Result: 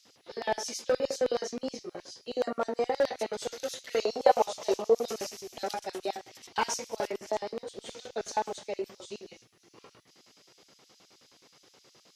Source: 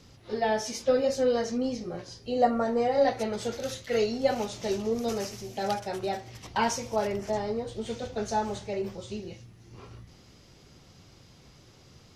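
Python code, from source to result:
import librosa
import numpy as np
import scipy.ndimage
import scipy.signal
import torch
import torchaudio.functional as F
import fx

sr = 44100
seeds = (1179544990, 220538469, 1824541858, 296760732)

y = fx.filter_lfo_highpass(x, sr, shape='square', hz=9.5, low_hz=350.0, high_hz=4000.0, q=0.77)
y = fx.clip_asym(y, sr, top_db=-20.5, bottom_db=-20.0)
y = fx.band_shelf(y, sr, hz=740.0, db=10.0, octaves=1.7, at=(4.01, 5.03))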